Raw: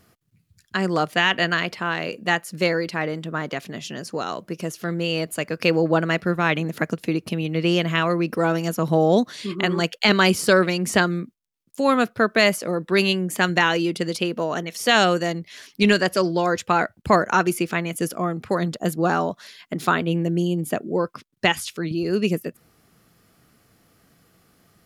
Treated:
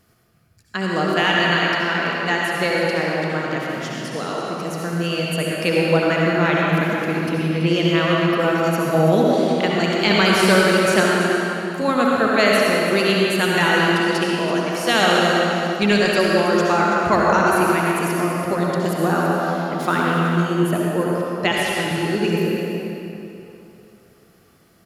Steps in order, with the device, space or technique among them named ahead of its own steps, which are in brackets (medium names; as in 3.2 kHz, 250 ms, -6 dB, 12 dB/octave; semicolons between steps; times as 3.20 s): 10.86–11.82 s: high-pass 140 Hz 24 dB/octave; cave (delay 331 ms -10.5 dB; reverberation RT60 3.1 s, pre-delay 60 ms, DRR -4 dB); trim -2 dB